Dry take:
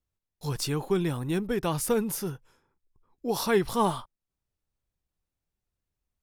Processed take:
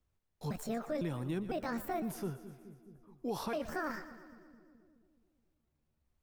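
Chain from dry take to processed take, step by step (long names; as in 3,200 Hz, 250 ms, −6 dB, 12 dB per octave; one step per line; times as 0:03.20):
pitch shifter gated in a rhythm +7.5 semitones, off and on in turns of 504 ms
high-shelf EQ 3,200 Hz −9 dB
brickwall limiter −21.5 dBFS, peak gain reduction 8 dB
echo with a time of its own for lows and highs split 430 Hz, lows 212 ms, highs 119 ms, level −15 dB
multiband upward and downward compressor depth 40%
level −6 dB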